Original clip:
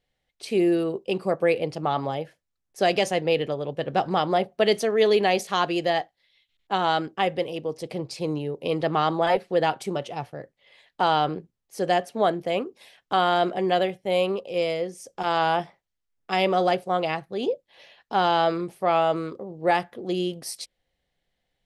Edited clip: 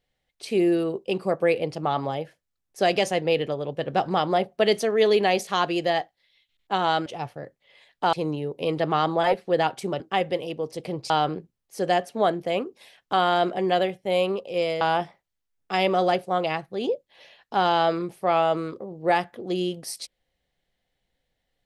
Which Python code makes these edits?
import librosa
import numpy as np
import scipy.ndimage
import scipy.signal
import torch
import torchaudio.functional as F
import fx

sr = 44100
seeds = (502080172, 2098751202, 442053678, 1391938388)

y = fx.edit(x, sr, fx.swap(start_s=7.06, length_s=1.1, other_s=10.03, other_length_s=1.07),
    fx.cut(start_s=14.81, length_s=0.59), tone=tone)